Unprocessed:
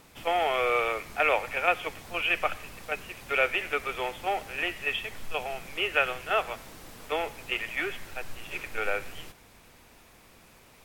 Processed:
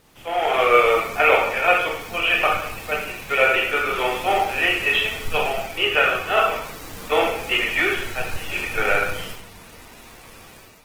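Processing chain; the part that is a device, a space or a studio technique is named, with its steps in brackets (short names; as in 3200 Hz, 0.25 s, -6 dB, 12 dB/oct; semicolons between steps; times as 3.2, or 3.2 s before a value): speakerphone in a meeting room (reverb RT60 0.65 s, pre-delay 20 ms, DRR -1 dB; AGC gain up to 10 dB; gain -1.5 dB; Opus 16 kbps 48000 Hz)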